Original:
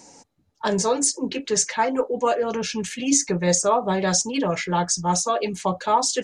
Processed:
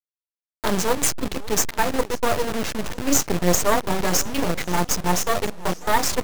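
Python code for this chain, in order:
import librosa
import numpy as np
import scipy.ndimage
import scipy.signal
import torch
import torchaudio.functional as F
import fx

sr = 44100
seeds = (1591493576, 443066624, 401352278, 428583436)

y = fx.delta_hold(x, sr, step_db=-22.5)
y = np.maximum(y, 0.0)
y = fx.echo_warbled(y, sr, ms=539, feedback_pct=72, rate_hz=2.8, cents=183, wet_db=-21)
y = y * 10.0 ** (4.5 / 20.0)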